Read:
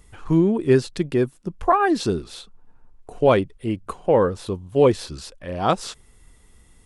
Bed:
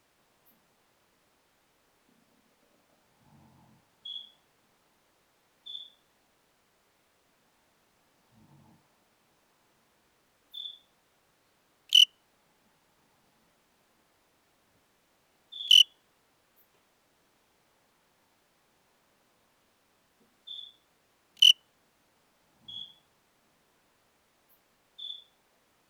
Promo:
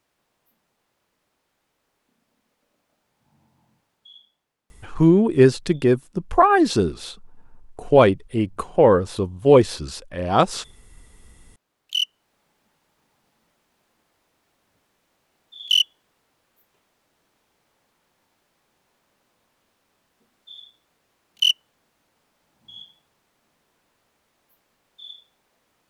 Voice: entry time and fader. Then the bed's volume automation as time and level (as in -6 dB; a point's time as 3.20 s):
4.70 s, +3.0 dB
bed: 3.87 s -4 dB
4.65 s -14.5 dB
11.02 s -14.5 dB
12.40 s 0 dB